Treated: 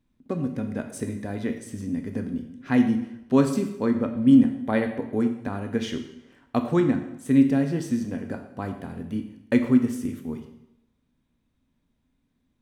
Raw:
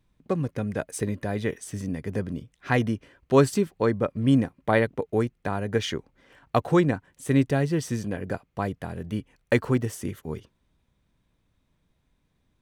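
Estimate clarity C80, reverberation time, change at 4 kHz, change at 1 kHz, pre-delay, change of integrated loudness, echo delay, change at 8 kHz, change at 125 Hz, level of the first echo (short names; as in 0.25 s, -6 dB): 10.5 dB, 0.85 s, -4.5 dB, -4.5 dB, 6 ms, +1.5 dB, none, n/a, -4.0 dB, none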